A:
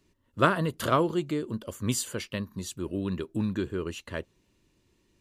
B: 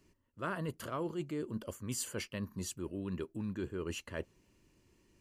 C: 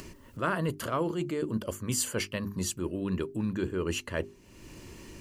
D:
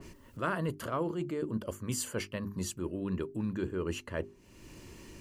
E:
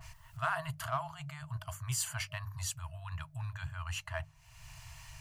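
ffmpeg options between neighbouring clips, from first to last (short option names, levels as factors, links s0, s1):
-af "areverse,acompressor=threshold=0.0178:ratio=8,areverse,equalizer=f=3700:t=o:w=0.21:g=-10.5"
-af "bandreject=f=50:t=h:w=6,bandreject=f=100:t=h:w=6,bandreject=f=150:t=h:w=6,bandreject=f=200:t=h:w=6,bandreject=f=250:t=h:w=6,bandreject=f=300:t=h:w=6,bandreject=f=350:t=h:w=6,bandreject=f=400:t=h:w=6,acompressor=mode=upward:threshold=0.00794:ratio=2.5,volume=2.66"
-af "adynamicequalizer=threshold=0.00398:dfrequency=2000:dqfactor=0.7:tfrequency=2000:tqfactor=0.7:attack=5:release=100:ratio=0.375:range=3.5:mode=cutabove:tftype=highshelf,volume=0.708"
-filter_complex "[0:a]afftfilt=real='re*(1-between(b*sr/4096,160,620))':imag='im*(1-between(b*sr/4096,160,620))':win_size=4096:overlap=0.75,asplit=2[s0][s1];[s1]asoftclip=type=hard:threshold=0.0158,volume=0.282[s2];[s0][s2]amix=inputs=2:normalize=0"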